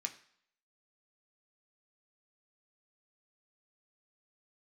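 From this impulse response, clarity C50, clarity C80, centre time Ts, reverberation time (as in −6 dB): 14.0 dB, 17.0 dB, 8 ms, 0.60 s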